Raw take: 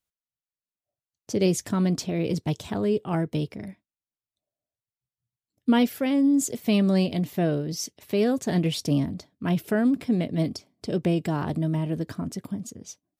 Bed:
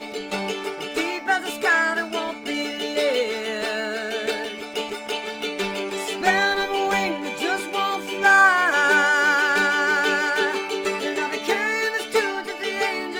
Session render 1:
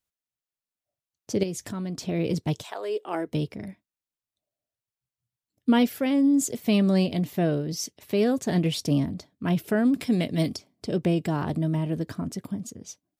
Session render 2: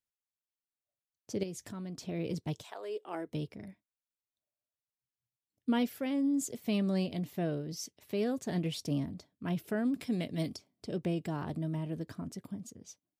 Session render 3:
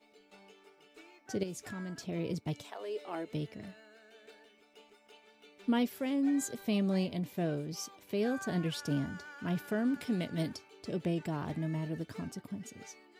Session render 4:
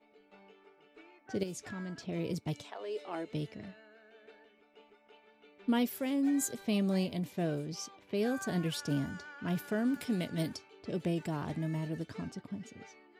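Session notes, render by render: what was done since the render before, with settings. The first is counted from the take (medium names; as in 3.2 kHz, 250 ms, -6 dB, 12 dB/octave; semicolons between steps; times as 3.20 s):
1.43–2.03 s: compression 2.5:1, threshold -33 dBFS; 2.62–3.27 s: high-pass 660 Hz -> 260 Hz 24 dB/octave; 9.94–10.56 s: treble shelf 2 kHz +9.5 dB
trim -9.5 dB
add bed -31 dB
level-controlled noise filter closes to 2.1 kHz, open at -30.5 dBFS; treble shelf 10 kHz +11.5 dB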